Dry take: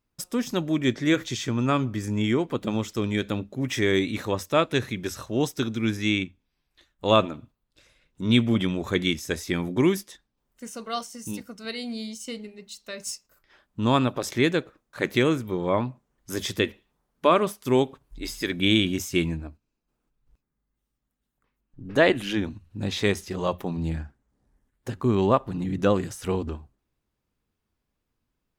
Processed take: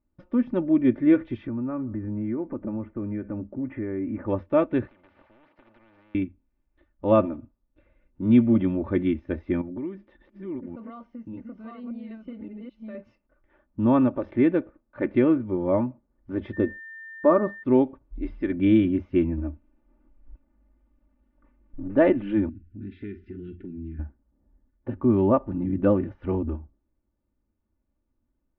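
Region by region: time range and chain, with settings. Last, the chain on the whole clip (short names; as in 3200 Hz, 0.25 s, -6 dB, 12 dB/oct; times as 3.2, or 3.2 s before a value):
1.47–4.27 inverse Chebyshev low-pass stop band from 6600 Hz, stop band 60 dB + compressor 3:1, threshold -30 dBFS
4.87–6.15 HPF 630 Hz + compressor 8:1, threshold -39 dBFS + spectral compressor 10:1
9.61–12.95 reverse delay 0.575 s, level -2 dB + compressor 3:1, threshold -37 dBFS
16.52–17.62 expander -51 dBFS + band shelf 2400 Hz -12.5 dB 1.1 oct + whine 1800 Hz -33 dBFS
19.37–21.88 G.711 law mismatch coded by mu + comb 3.4 ms, depth 53%
22.49–23.99 brick-wall FIR band-stop 440–1300 Hz + compressor 2:1, threshold -42 dBFS + doubler 45 ms -13.5 dB
whole clip: inverse Chebyshev low-pass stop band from 7800 Hz, stop band 60 dB; tilt shelf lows +8.5 dB, about 1100 Hz; comb 3.4 ms, depth 64%; gain -6 dB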